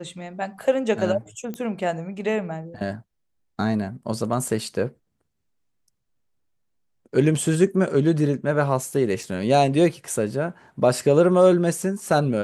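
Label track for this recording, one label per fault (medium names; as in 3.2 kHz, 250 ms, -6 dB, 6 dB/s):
1.540000	1.540000	pop -19 dBFS
9.230000	9.230000	dropout 3.3 ms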